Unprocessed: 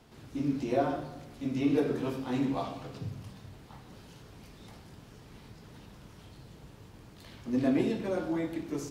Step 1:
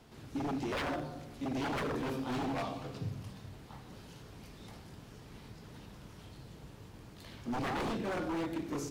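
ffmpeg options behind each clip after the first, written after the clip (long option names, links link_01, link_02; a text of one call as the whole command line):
ffmpeg -i in.wav -af "aeval=exprs='0.0316*(abs(mod(val(0)/0.0316+3,4)-2)-1)':channel_layout=same" out.wav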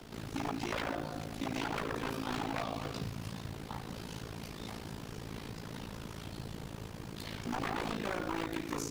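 ffmpeg -i in.wav -filter_complex "[0:a]acrossover=split=110|850[link_01][link_02][link_03];[link_01]acompressor=threshold=-57dB:ratio=4[link_04];[link_02]acompressor=threshold=-48dB:ratio=4[link_05];[link_03]acompressor=threshold=-47dB:ratio=4[link_06];[link_04][link_05][link_06]amix=inputs=3:normalize=0,acrusher=bits=7:mode=log:mix=0:aa=0.000001,tremolo=f=55:d=0.857,volume=12dB" out.wav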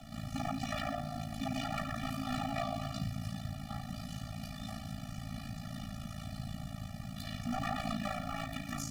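ffmpeg -i in.wav -af "afftfilt=real='re*eq(mod(floor(b*sr/1024/280),2),0)':imag='im*eq(mod(floor(b*sr/1024/280),2),0)':win_size=1024:overlap=0.75,volume=3dB" out.wav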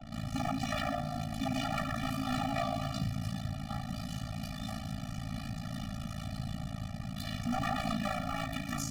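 ffmpeg -i in.wav -filter_complex "[0:a]anlmdn=0.00158,asplit=2[link_01][link_02];[link_02]asoftclip=type=tanh:threshold=-31.5dB,volume=-5dB[link_03];[link_01][link_03]amix=inputs=2:normalize=0" out.wav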